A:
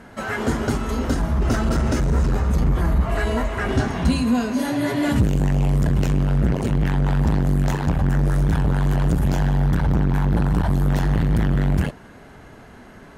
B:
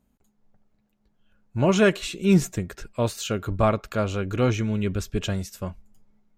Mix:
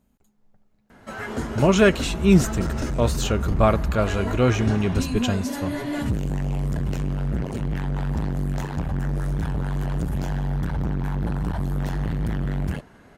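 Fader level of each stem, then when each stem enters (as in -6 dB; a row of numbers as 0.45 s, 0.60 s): -6.5 dB, +2.5 dB; 0.90 s, 0.00 s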